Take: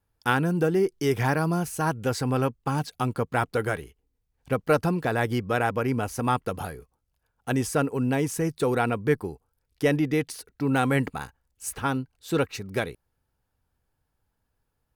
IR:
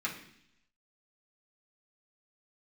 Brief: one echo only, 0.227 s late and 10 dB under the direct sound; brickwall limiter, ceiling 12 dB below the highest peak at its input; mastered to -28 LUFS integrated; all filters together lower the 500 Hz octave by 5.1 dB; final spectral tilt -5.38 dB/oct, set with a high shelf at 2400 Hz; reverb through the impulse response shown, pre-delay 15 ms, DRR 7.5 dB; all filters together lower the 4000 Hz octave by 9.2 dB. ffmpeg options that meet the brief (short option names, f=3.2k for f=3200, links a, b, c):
-filter_complex "[0:a]equalizer=f=500:t=o:g=-6,highshelf=f=2.4k:g=-4,equalizer=f=4k:t=o:g=-9,alimiter=limit=-23dB:level=0:latency=1,aecho=1:1:227:0.316,asplit=2[a][b];[1:a]atrim=start_sample=2205,adelay=15[c];[b][c]afir=irnorm=-1:irlink=0,volume=-12.5dB[d];[a][d]amix=inputs=2:normalize=0,volume=4.5dB"